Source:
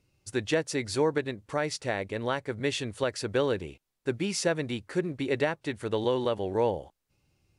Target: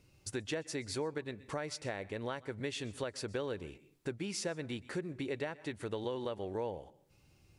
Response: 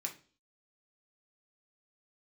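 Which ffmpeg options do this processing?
-filter_complex "[0:a]asplit=2[a][b];[1:a]atrim=start_sample=2205,adelay=125[c];[b][c]afir=irnorm=-1:irlink=0,volume=-20.5dB[d];[a][d]amix=inputs=2:normalize=0,acompressor=threshold=-48dB:ratio=2.5,volume=5dB"

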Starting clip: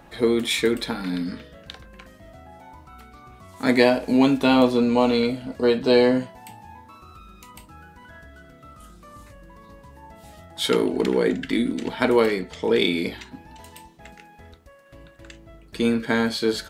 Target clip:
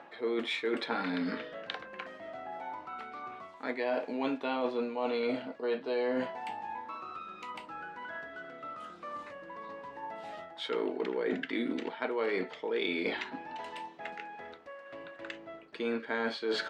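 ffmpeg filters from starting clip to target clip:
-af "highpass=410,lowpass=2.7k,areverse,acompressor=threshold=-35dB:ratio=10,areverse,volume=5.5dB"

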